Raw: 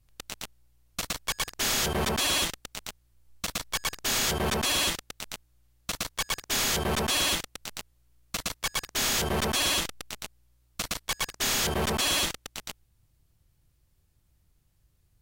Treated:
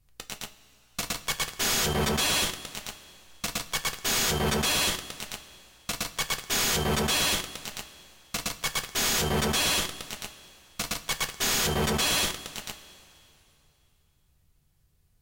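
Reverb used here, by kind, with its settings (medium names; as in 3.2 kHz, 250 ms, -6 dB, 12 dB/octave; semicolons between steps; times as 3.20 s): two-slope reverb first 0.2 s, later 2.9 s, from -20 dB, DRR 5.5 dB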